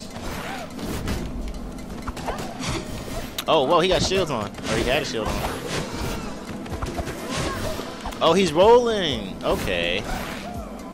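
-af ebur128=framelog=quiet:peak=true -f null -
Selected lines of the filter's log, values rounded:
Integrated loudness:
  I:         -23.9 LUFS
  Threshold: -34.0 LUFS
Loudness range:
  LRA:         7.4 LU
  Threshold: -43.7 LUFS
  LRA low:   -28.7 LUFS
  LRA high:  -21.2 LUFS
True peak:
  Peak:       -6.6 dBFS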